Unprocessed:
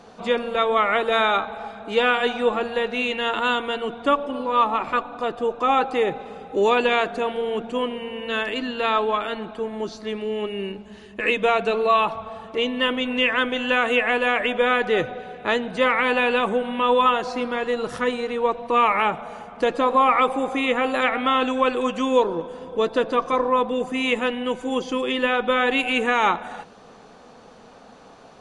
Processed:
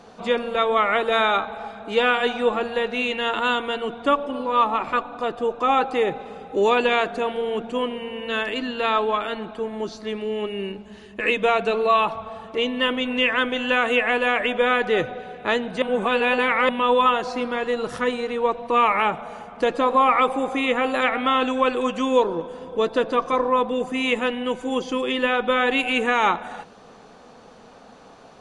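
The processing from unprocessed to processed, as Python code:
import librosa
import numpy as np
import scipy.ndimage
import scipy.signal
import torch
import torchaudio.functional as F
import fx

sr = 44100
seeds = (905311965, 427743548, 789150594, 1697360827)

y = fx.edit(x, sr, fx.reverse_span(start_s=15.82, length_s=0.87), tone=tone)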